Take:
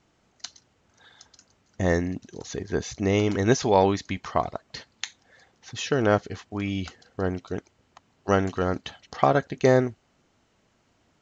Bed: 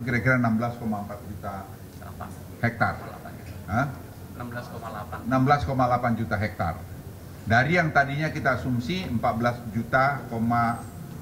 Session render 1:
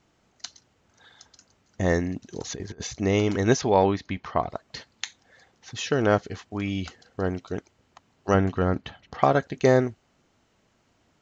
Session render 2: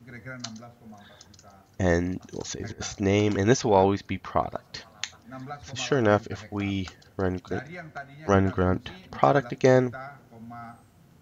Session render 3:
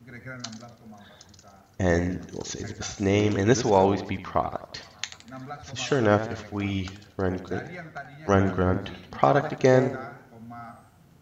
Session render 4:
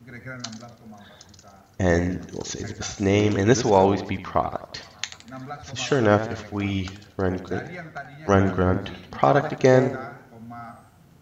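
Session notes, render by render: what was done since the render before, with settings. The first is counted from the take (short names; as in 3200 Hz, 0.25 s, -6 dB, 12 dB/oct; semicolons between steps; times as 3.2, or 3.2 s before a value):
2.3–2.87 negative-ratio compressor -34 dBFS, ratio -0.5; 3.61–4.5 air absorption 160 m; 8.34–9.22 tone controls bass +5 dB, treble -12 dB
add bed -18.5 dB
warbling echo 83 ms, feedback 46%, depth 131 cents, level -12 dB
gain +2.5 dB; limiter -3 dBFS, peak gain reduction 2 dB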